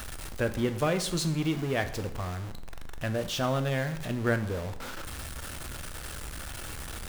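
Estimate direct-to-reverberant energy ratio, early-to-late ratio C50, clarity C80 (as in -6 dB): 8.5 dB, 12.5 dB, 15.0 dB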